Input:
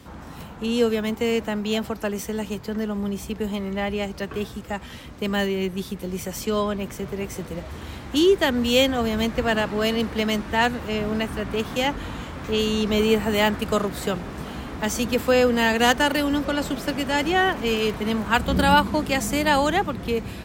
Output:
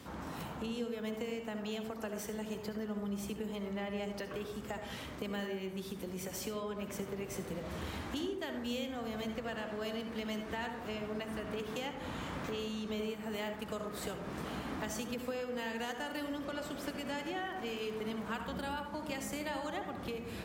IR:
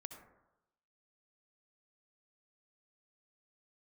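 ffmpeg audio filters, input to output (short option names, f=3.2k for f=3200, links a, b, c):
-filter_complex "[0:a]highpass=f=130:p=1,acompressor=threshold=-34dB:ratio=12[a];[1:a]atrim=start_sample=2205[b];[a][b]afir=irnorm=-1:irlink=0,volume=2.5dB"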